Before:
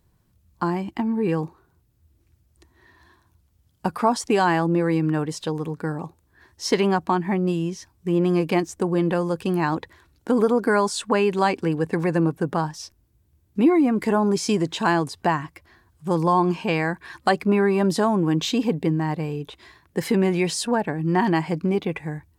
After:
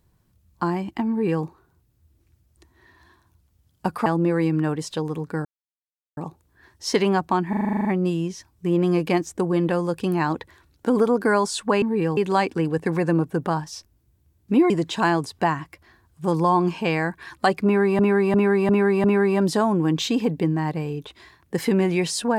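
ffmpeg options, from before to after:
-filter_complex "[0:a]asplit=19[a][b][c][d][e][f][g][h][i][j][k][l][m][n][o][p][q][r][s];[a]atrim=end=4.062[t];[b]atrim=start=4.558:end=5.95,asetpts=PTS-STARTPTS,afade=t=out:st=1.388:d=0.004:c=hsin,apad=pad_dur=0.72[u];[c]atrim=start=5.95:end=7.312,asetpts=PTS-STARTPTS,afade=t=in:d=0.004:c=hsin[v];[d]atrim=start=7.268:end=7.312[w];[e]atrim=start=7.268:end=7.312[x];[f]atrim=start=7.268:end=7.312[y];[g]atrim=start=7.268:end=7.312[z];[h]atrim=start=7.268:end=7.312[aa];[i]atrim=start=7.268:end=7.312[ab];[j]atrim=start=7.268:end=7.312[ac];[k]atrim=start=7.268:end=7.312[ad];[l]atrim=start=7.268:end=11.242[ae];[m]atrim=start=1.088:end=1.442[af];[n]atrim=start=11.238:end=13.772[ag];[o]atrim=start=14.528:end=17.822[ah];[p]atrim=start=17.468:end=17.822[ai];[q]atrim=start=17.468:end=17.822[aj];[r]atrim=start=17.468:end=17.822[ak];[s]atrim=start=17.468[al];[u][v]concat=n=2:v=0:a=1[am];[t][am]acrossfade=d=0.004:c1=hsin:c2=hsin[an];[an][w]acrossfade=d=0.004:c1=hsin:c2=hsin[ao];[ao][x]acrossfade=d=0.004:c1=hsin:c2=hsin[ap];[ap][y]acrossfade=d=0.004:c1=hsin:c2=hsin[aq];[aq][z]acrossfade=d=0.004:c1=hsin:c2=hsin[ar];[ar][aa]acrossfade=d=0.004:c1=hsin:c2=hsin[as];[as][ab]acrossfade=d=0.004:c1=hsin:c2=hsin[at];[at][ac]acrossfade=d=0.004:c1=hsin:c2=hsin[au];[au][ad]acrossfade=d=0.004:c1=hsin:c2=hsin[av];[av][ae]acrossfade=d=0.004:c1=hsin:c2=hsin[aw];[aw][af]acrossfade=d=0.004:c1=hsin:c2=hsin[ax];[ax][ag]acrossfade=d=0.004:c1=hsin:c2=hsin[ay];[ay][ah]acrossfade=d=0.004:c1=hsin:c2=hsin[az];[az][ai]acrossfade=d=0.004:c1=hsin:c2=hsin[ba];[ba][aj]acrossfade=d=0.004:c1=hsin:c2=hsin[bb];[bb][ak]acrossfade=d=0.004:c1=hsin:c2=hsin[bc];[bc][al]acrossfade=d=0.004:c1=hsin:c2=hsin"

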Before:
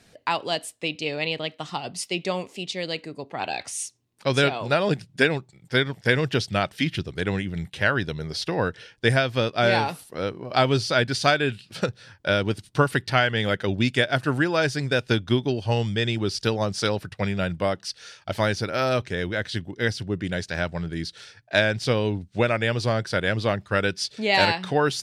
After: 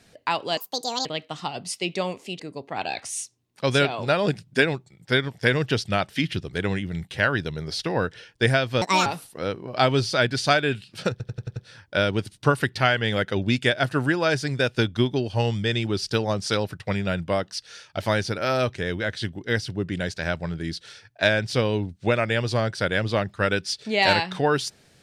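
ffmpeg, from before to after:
-filter_complex "[0:a]asplit=11[a][b][c][d][e][f][g][h][i][j][k];[a]atrim=end=0.574[l];[b]atrim=start=0.57:end=1.35,asetpts=PTS-STARTPTS,asetrate=71001,aresample=44100,atrim=end_sample=21365,asetpts=PTS-STARTPTS[m];[c]atrim=start=1.346:end=2.692[n];[d]atrim=start=3.018:end=9.444[o];[e]atrim=start=9.44:end=9.83,asetpts=PTS-STARTPTS,asetrate=70119,aresample=44100[p];[f]atrim=start=9.826:end=11.972[q];[g]atrim=start=11.878:end=11.972[r];[h]atrim=start=11.878:end=11.972[s];[i]atrim=start=11.878:end=11.972[t];[j]atrim=start=11.878:end=11.972[u];[k]atrim=start=11.878[v];[l][m]acrossfade=d=0.004:c1=hsin:c2=hsin[w];[w][n]acrossfade=d=0.004:c1=hsin:c2=hsin[x];[x][o]acrossfade=d=0.004:c1=hsin:c2=hsin[y];[y][p]acrossfade=d=0.004:c1=hsin:c2=hsin[z];[z][q]acrossfade=d=0.004:c1=hsin:c2=hsin[aa];[aa][r]acrossfade=d=0.004:c1=hsin:c2=hsin[ab];[ab][s]acrossfade=d=0.004:c1=hsin:c2=hsin[ac];[ac][t]acrossfade=d=0.004:c1=hsin:c2=hsin[ad];[ad][u]acrossfade=d=0.004:c1=hsin:c2=hsin[ae];[ae][v]acrossfade=d=0.004:c1=hsin:c2=hsin"

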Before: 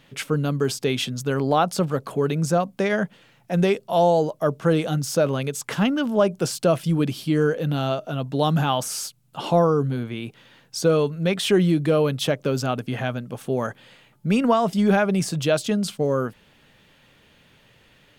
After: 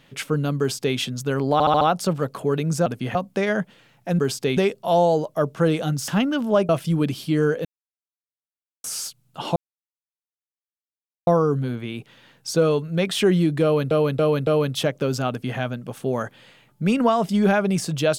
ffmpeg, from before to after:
-filter_complex "[0:a]asplit=17[a][b][c][d][e][f][g][h][i][j][k][l][m][n][o][p][q];[a]atrim=end=1.602[r];[b]atrim=start=1.528:end=1.602[s];[c]atrim=start=1.528:end=1.602[t];[d]atrim=start=1.528:end=1.602[u];[e]atrim=start=1.528:end=2.582[v];[f]atrim=start=12.728:end=13.022[w];[g]atrim=start=2.578:end=3.622[x];[h]atrim=start=0.588:end=0.972[y];[i]atrim=start=3.618:end=5.132[z];[j]atrim=start=5.728:end=6.342[aa];[k]atrim=start=6.678:end=7.64,asetpts=PTS-STARTPTS,afade=t=out:st=0.958:d=0.004:c=hsin[ab];[l]atrim=start=7.64:end=8.83,asetpts=PTS-STARTPTS,volume=0[ac];[m]atrim=start=8.83:end=9.55,asetpts=PTS-STARTPTS,afade=t=in:d=0.004:c=hsin,afade=t=out:st=0.716:d=0.004:c=hsin,apad=pad_dur=1.71[ad];[n]atrim=start=9.55:end=12.192,asetpts=PTS-STARTPTS,afade=t=in:d=0.004:c=hsin[ae];[o]atrim=start=11.908:end=12.192[af];[p]atrim=start=11.908:end=12.192[ag];[q]atrim=start=11.908[ah];[r][s]acrossfade=d=0.004:c1=hsin:c2=hsin[ai];[ai][t]acrossfade=d=0.004:c1=hsin:c2=hsin[aj];[aj][u]acrossfade=d=0.004:c1=hsin:c2=hsin[ak];[ak][v]acrossfade=d=0.004:c1=hsin:c2=hsin[al];[al][w]acrossfade=d=0.004:c1=hsin:c2=hsin[am];[am][x]acrossfade=d=0.004:c1=hsin:c2=hsin[an];[an][y]acrossfade=d=0.004:c1=hsin:c2=hsin[ao];[ao][z]acrossfade=d=0.004:c1=hsin:c2=hsin[ap];[ap][aa]acrossfade=d=0.004:c1=hsin:c2=hsin[aq];[ab][ac][ad][ae]concat=n=4:v=0:a=1[ar];[aq][ar]acrossfade=d=0.004:c1=hsin:c2=hsin[as];[as][af]acrossfade=d=0.004:c1=hsin:c2=hsin[at];[at][ag]acrossfade=d=0.004:c1=hsin:c2=hsin[au];[au][ah]acrossfade=d=0.004:c1=hsin:c2=hsin"

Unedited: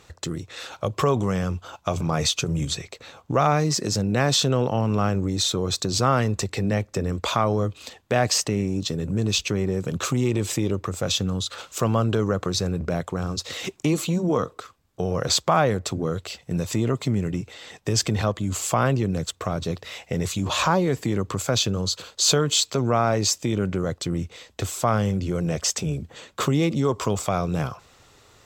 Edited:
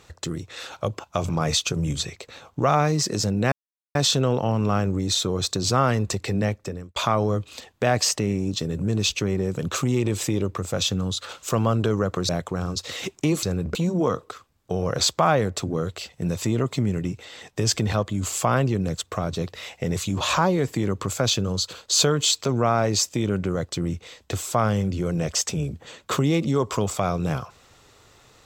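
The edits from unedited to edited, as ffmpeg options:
-filter_complex "[0:a]asplit=7[a][b][c][d][e][f][g];[a]atrim=end=0.992[h];[b]atrim=start=1.708:end=4.24,asetpts=PTS-STARTPTS,afade=t=out:st=2.528:d=0.004:c=hsin,apad=pad_dur=0.43[i];[c]atrim=start=4.24:end=7.25,asetpts=PTS-STARTPTS,afade=t=in:d=0.004:c=hsin,afade=t=out:st=2.51:d=0.5[j];[d]atrim=start=7.25:end=12.582,asetpts=PTS-STARTPTS,afade=t=in:d=0.004:c=hsin[k];[e]atrim=start=12.898:end=14.042[l];[f]atrim=start=12.578:end=12.902[m];[g]atrim=start=14.038[n];[i][j][k]concat=n=3:v=0:a=1[o];[h][o]acrossfade=d=0.004:c1=hsin:c2=hsin[p];[p][l]acrossfade=d=0.004:c1=hsin:c2=hsin[q];[q][m]acrossfade=d=0.004:c1=hsin:c2=hsin[r];[r][n]acrossfade=d=0.004:c1=hsin:c2=hsin"

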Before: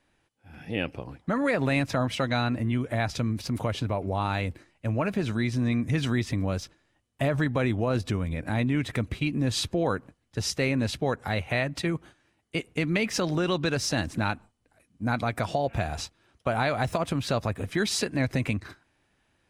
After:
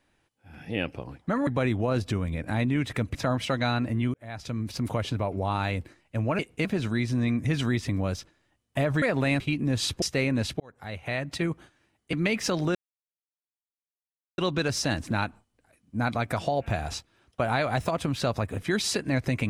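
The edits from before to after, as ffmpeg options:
-filter_complex "[0:a]asplit=12[a][b][c][d][e][f][g][h][i][j][k][l];[a]atrim=end=1.472[m];[b]atrim=start=7.458:end=9.142[n];[c]atrim=start=1.848:end=2.84,asetpts=PTS-STARTPTS,afade=t=out:st=0.988:d=0.004:c=hsin[o];[d]atrim=start=2.84:end=5.092,asetpts=PTS-STARTPTS,afade=t=in:d=0.64[p];[e]atrim=start=12.568:end=12.832[q];[f]atrim=start=5.088:end=7.462[r];[g]atrim=start=1.468:end=1.852[s];[h]atrim=start=9.138:end=9.762[t];[i]atrim=start=10.458:end=11.04,asetpts=PTS-STARTPTS,afade=t=out:st=0.578:d=0.004:c=hsin[u];[j]atrim=start=11.04:end=12.572,asetpts=PTS-STARTPTS,afade=t=in:d=0.83[v];[k]atrim=start=12.828:end=13.45,asetpts=PTS-STARTPTS,afade=t=out:st=0.618:d=0.004:c=hsin,apad=pad_dur=1.63[w];[l]atrim=start=13.45,asetpts=PTS-STARTPTS,afade=t=in:d=0.004:c=hsin[x];[m][n]acrossfade=d=0.004:c1=hsin:c2=hsin[y];[o][p]concat=n=2:v=0:a=1[z];[y][z]acrossfade=d=0.004:c1=hsin:c2=hsin[aa];[aa][q]acrossfade=d=0.004:c1=hsin:c2=hsin[ab];[ab][r]acrossfade=d=0.004:c1=hsin:c2=hsin[ac];[ac][s]acrossfade=d=0.004:c1=hsin:c2=hsin[ad];[ad][t]acrossfade=d=0.004:c1=hsin:c2=hsin[ae];[u][v]concat=n=2:v=0:a=1[af];[ae][af]acrossfade=d=0.004:c1=hsin:c2=hsin[ag];[w][x]concat=n=2:v=0:a=1[ah];[ag][ah]acrossfade=d=0.004:c1=hsin:c2=hsin"

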